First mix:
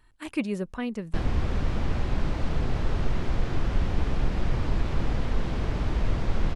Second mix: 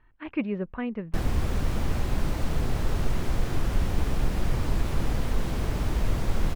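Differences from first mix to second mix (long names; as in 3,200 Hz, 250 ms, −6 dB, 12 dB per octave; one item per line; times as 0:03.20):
speech: add low-pass filter 2,600 Hz 24 dB per octave
background: remove low-pass filter 4,700 Hz 12 dB per octave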